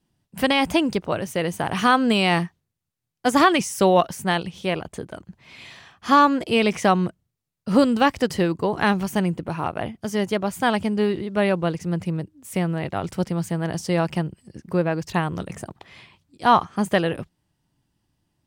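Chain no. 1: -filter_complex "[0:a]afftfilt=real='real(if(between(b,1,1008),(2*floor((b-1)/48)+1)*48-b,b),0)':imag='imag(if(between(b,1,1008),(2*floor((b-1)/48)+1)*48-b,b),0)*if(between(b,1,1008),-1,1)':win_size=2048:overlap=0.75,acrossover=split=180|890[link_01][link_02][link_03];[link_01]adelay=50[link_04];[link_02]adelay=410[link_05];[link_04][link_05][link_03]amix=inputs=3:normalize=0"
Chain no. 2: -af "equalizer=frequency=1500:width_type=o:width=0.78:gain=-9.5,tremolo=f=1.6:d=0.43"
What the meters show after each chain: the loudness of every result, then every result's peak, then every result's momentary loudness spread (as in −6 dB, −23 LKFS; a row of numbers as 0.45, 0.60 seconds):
−24.0, −25.5 LKFS; −6.0, −7.0 dBFS; 11, 13 LU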